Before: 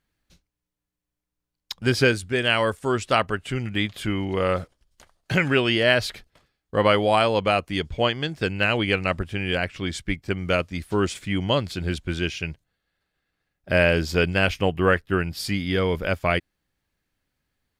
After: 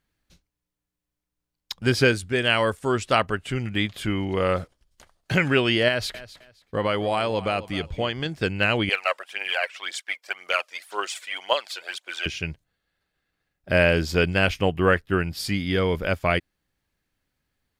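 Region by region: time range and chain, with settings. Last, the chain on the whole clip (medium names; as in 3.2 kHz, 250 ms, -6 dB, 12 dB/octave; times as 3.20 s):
5.88–8.26 s: compression 2:1, threshold -23 dBFS + feedback delay 262 ms, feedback 23%, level -16 dB
8.89–12.26 s: high-pass 620 Hz 24 dB/octave + phaser 1.9 Hz, delay 2.2 ms, feedback 54%
whole clip: none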